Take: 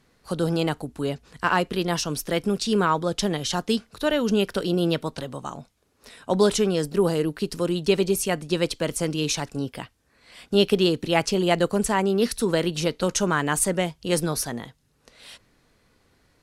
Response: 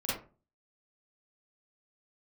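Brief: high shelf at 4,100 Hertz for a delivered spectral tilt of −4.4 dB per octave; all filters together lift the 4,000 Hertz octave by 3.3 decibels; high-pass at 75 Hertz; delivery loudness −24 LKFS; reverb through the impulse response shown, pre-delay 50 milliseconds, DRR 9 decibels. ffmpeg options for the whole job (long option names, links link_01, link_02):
-filter_complex "[0:a]highpass=75,equalizer=frequency=4000:width_type=o:gain=7,highshelf=frequency=4100:gain=-4.5,asplit=2[link_01][link_02];[1:a]atrim=start_sample=2205,adelay=50[link_03];[link_02][link_03]afir=irnorm=-1:irlink=0,volume=-15dB[link_04];[link_01][link_04]amix=inputs=2:normalize=0,volume=-1dB"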